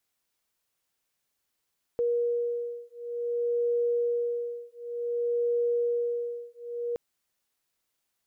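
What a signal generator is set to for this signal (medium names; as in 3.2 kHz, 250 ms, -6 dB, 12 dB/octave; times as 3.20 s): beating tones 476 Hz, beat 0.55 Hz, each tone -29 dBFS 4.97 s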